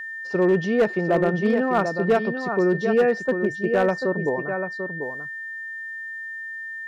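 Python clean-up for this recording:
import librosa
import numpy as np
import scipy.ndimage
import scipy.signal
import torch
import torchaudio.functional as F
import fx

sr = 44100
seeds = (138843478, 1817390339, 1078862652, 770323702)

y = fx.fix_declip(x, sr, threshold_db=-13.0)
y = fx.notch(y, sr, hz=1800.0, q=30.0)
y = fx.fix_echo_inverse(y, sr, delay_ms=741, level_db=-7.5)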